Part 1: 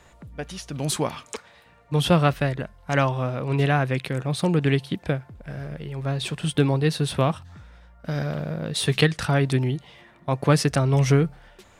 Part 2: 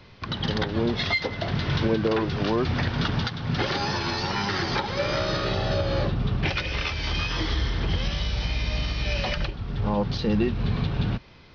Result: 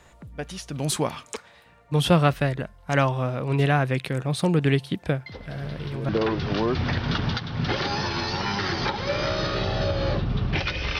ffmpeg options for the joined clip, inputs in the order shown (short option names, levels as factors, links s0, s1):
-filter_complex "[1:a]asplit=2[s0][s1];[0:a]apad=whole_dur=10.99,atrim=end=10.99,atrim=end=6.092[s2];[s1]atrim=start=1.988:end=6.89[s3];[s0]atrim=start=1.16:end=1.99,asetpts=PTS-STARTPTS,volume=0.224,afade=t=in:d=0.004:c=hsin,afade=t=out:st=0.826:d=0.004:c=hsin,adelay=5260[s4];[s2][s3]acrossfade=d=0.004:c1=hsin:c2=hsin[s5];[s5][s4]amix=inputs=2:normalize=0"